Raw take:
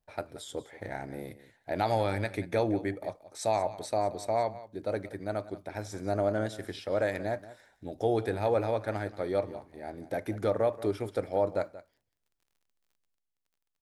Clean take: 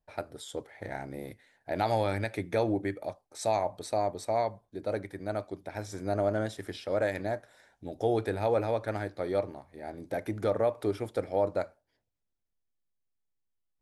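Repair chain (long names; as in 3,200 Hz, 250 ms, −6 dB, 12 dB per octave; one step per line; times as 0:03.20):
click removal
echo removal 181 ms −16.5 dB
level correction +6 dB, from 0:13.15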